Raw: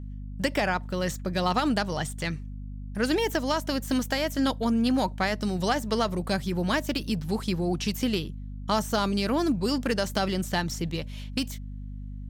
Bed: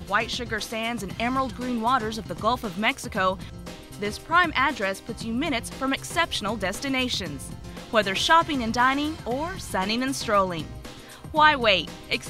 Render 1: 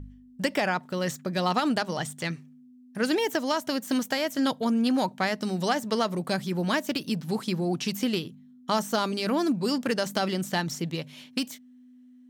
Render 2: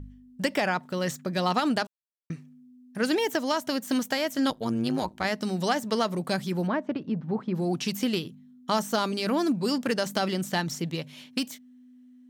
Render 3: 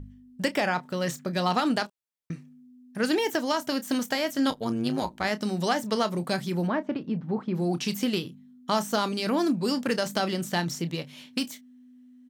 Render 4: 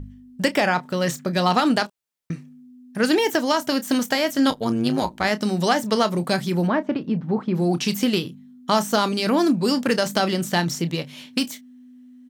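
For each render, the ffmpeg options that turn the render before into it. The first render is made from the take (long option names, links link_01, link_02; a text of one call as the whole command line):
ffmpeg -i in.wav -af "bandreject=frequency=50:width_type=h:width=4,bandreject=frequency=100:width_type=h:width=4,bandreject=frequency=150:width_type=h:width=4,bandreject=frequency=200:width_type=h:width=4" out.wav
ffmpeg -i in.wav -filter_complex "[0:a]asettb=1/sr,asplit=3[link_01][link_02][link_03];[link_01]atrim=end=4.504[link_04];[link_02]atrim=start=4.5:end=5.25,asetpts=PTS-STARTPTS,afade=type=in:duration=0.004:curve=qsin,afade=type=out:start_time=0.746:duration=0.004:curve=qsin,tremolo=f=110:d=0.788[link_05];[link_03]atrim=start=5.246[link_06];[link_04][link_05]acrossfade=duration=0.004:curve1=hsin:curve2=qsin[link_07];[link_07][link_06]acrossfade=duration=0.004:curve1=qsin:curve2=hsin,asplit=3[link_08][link_09][link_10];[link_08]afade=type=out:start_time=6.66:duration=0.02[link_11];[link_09]lowpass=1300,afade=type=in:start_time=6.66:duration=0.02,afade=type=out:start_time=7.54:duration=0.02[link_12];[link_10]afade=type=in:start_time=7.54:duration=0.02[link_13];[link_11][link_12][link_13]amix=inputs=3:normalize=0,asplit=3[link_14][link_15][link_16];[link_14]atrim=end=1.87,asetpts=PTS-STARTPTS,afade=type=out:start_time=1.866:duration=0.004:curve=hsin[link_17];[link_15]atrim=start=1.87:end=2.3,asetpts=PTS-STARTPTS,volume=0[link_18];[link_16]atrim=start=2.3,asetpts=PTS-STARTPTS,afade=type=in:duration=0.004:curve=hsin[link_19];[link_17][link_18][link_19]concat=n=3:v=0:a=1" out.wav
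ffmpeg -i in.wav -filter_complex "[0:a]asplit=2[link_01][link_02];[link_02]adelay=29,volume=-12.5dB[link_03];[link_01][link_03]amix=inputs=2:normalize=0" out.wav
ffmpeg -i in.wav -af "volume=6dB" out.wav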